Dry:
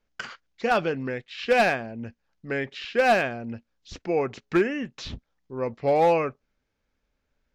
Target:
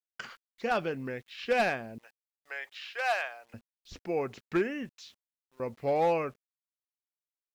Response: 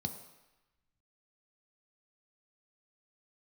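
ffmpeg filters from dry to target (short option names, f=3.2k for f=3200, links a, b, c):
-filter_complex "[0:a]asettb=1/sr,asplit=3[a][b][c];[a]atrim=end=1.984[d];[b]atrim=start=1.98:end=3.54,asetpts=PTS-STARTPTS,afade=t=in:d=0.004:c=qsin,afade=t=out:st=1.556:d=0.004:c=qsin,highpass=f=700:w=0.5412,highpass=f=700:w=1.3066[e];[c]atrim=start=3.536[f];[d][e]acrossfade=d=0.004:c1=hsin:c2=qsin[g];[g][f]acrossfade=d=0.004:c1=qsin:c2=hsin,asettb=1/sr,asplit=3[h][i][j];[h]atrim=end=4.894[k];[i]atrim=start=4.89:end=5.6,asetpts=PTS-STARTPTS,afade=t=in:d=0.004:c=qsin,afade=t=out:st=0.706:d=0.004:c=qsin,aderivative[l];[j]atrim=start=5.596[m];[k][l]acrossfade=d=0.004:c1=hsin:c2=qsin[n];[n][m]acrossfade=d=0.004:c1=qsin:c2=hsin,acrusher=bits=9:mix=0:aa=0.000001,volume=-6.5dB"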